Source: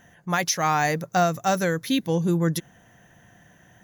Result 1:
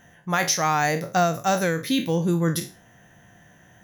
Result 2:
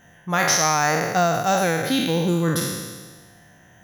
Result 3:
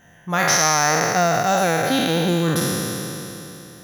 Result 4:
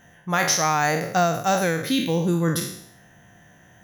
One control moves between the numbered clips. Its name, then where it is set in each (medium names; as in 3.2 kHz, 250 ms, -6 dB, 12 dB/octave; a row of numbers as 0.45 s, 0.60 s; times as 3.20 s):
spectral sustain, RT60: 0.32 s, 1.43 s, 3.18 s, 0.67 s